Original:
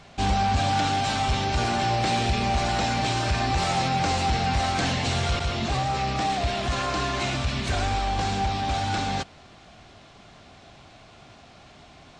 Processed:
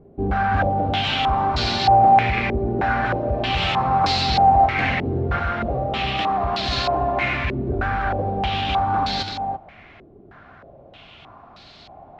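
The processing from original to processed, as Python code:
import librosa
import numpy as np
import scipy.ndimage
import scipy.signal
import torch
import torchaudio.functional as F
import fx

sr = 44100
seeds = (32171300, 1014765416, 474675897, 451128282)

y = x + 10.0 ** (-6.5 / 20.0) * np.pad(x, (int(337 * sr / 1000.0), 0))[:len(x)]
y = fx.filter_held_lowpass(y, sr, hz=3.2, low_hz=390.0, high_hz=4300.0)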